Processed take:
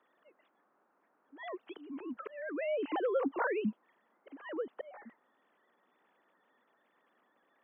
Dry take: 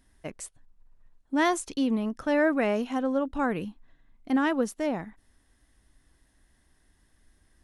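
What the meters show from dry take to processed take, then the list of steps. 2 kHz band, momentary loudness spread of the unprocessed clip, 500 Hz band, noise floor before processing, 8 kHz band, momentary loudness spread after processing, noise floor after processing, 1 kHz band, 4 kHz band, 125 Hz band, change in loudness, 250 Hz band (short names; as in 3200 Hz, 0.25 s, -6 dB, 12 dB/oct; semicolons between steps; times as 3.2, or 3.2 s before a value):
-10.5 dB, 17 LU, -7.0 dB, -67 dBFS, under -35 dB, 17 LU, -75 dBFS, -10.5 dB, -15.0 dB, under -10 dB, -9.5 dB, -14.0 dB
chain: sine-wave speech; compressor 6:1, threshold -26 dBFS, peak gain reduction 11 dB; auto swell 0.6 s; band noise 210–1400 Hz -73 dBFS; gain -1.5 dB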